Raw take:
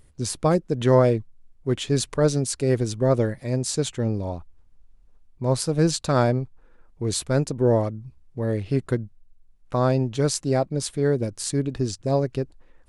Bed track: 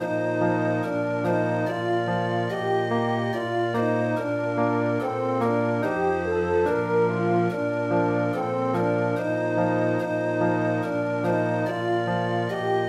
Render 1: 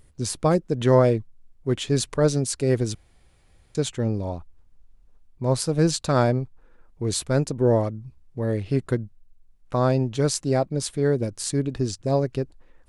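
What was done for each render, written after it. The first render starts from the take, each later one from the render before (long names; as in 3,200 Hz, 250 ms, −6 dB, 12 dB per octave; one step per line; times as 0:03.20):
0:02.95–0:03.75: fill with room tone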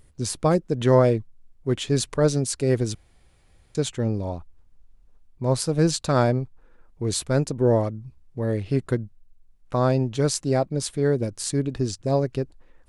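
no processing that can be heard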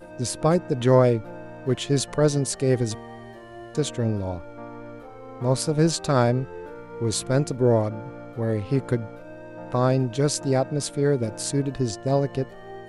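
mix in bed track −16 dB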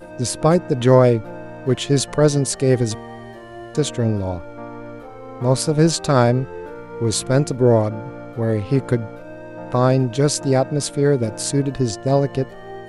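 level +5 dB
brickwall limiter −3 dBFS, peak gain reduction 1 dB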